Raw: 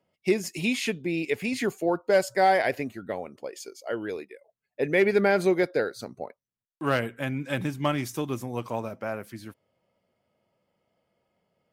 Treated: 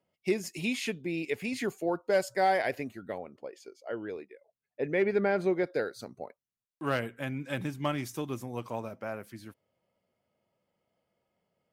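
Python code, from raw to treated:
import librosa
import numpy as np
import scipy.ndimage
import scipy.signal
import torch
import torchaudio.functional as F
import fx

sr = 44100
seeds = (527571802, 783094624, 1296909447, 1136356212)

y = fx.lowpass(x, sr, hz=2100.0, slope=6, at=(3.18, 5.67))
y = y * librosa.db_to_amplitude(-5.0)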